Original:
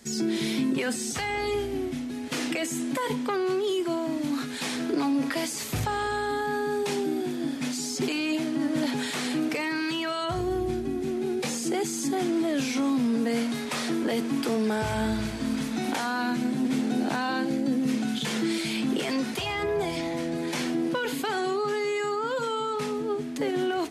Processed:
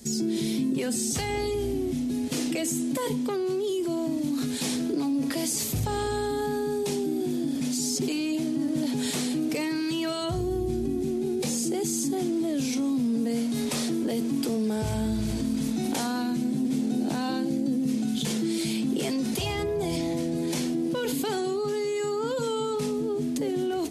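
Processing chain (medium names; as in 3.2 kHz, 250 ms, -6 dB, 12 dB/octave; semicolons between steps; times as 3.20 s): peaking EQ 1.5 kHz -14.5 dB 2.6 oct; in parallel at 0 dB: compressor with a negative ratio -36 dBFS, ratio -1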